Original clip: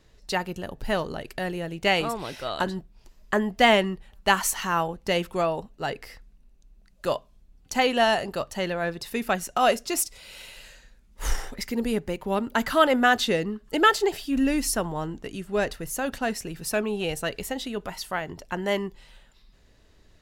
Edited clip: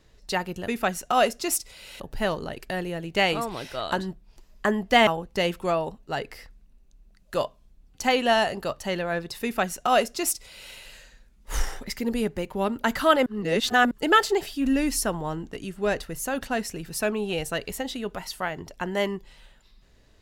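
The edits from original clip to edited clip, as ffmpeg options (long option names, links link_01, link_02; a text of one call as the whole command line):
ffmpeg -i in.wav -filter_complex "[0:a]asplit=6[link_01][link_02][link_03][link_04][link_05][link_06];[link_01]atrim=end=0.682[link_07];[link_02]atrim=start=9.138:end=10.462[link_08];[link_03]atrim=start=0.678:end=3.752[link_09];[link_04]atrim=start=4.778:end=12.972[link_10];[link_05]atrim=start=12.968:end=13.622,asetpts=PTS-STARTPTS,areverse[link_11];[link_06]atrim=start=13.618[link_12];[link_07][link_08]acrossfade=duration=0.004:curve1=hsin:curve2=hsin[link_13];[link_13][link_09]acrossfade=duration=0.004:curve1=hsin:curve2=hsin[link_14];[link_14][link_10]acrossfade=duration=0.004:curve1=hsin:curve2=hsin[link_15];[link_15][link_11]acrossfade=duration=0.004:curve1=hsin:curve2=hsin[link_16];[link_16][link_12]acrossfade=duration=0.004:curve1=hsin:curve2=hsin" out.wav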